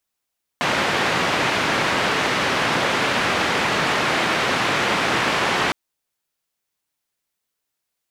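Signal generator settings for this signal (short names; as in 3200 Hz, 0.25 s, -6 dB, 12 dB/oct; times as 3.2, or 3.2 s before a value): noise band 120–2200 Hz, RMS -20.5 dBFS 5.11 s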